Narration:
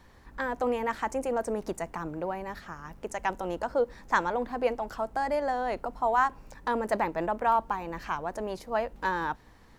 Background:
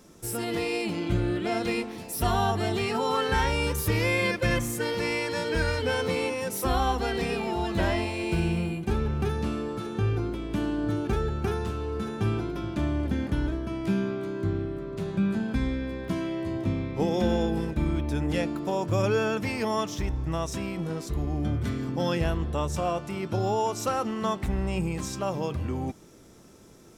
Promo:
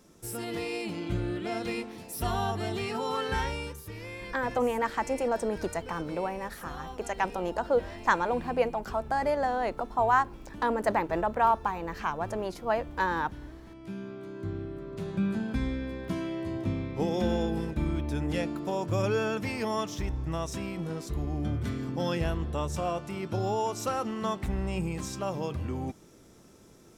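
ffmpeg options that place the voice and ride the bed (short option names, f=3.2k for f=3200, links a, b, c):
-filter_complex "[0:a]adelay=3950,volume=1dB[a];[1:a]volume=8.5dB,afade=t=out:st=3.38:d=0.43:silence=0.266073,afade=t=in:st=13.73:d=1.48:silence=0.211349[b];[a][b]amix=inputs=2:normalize=0"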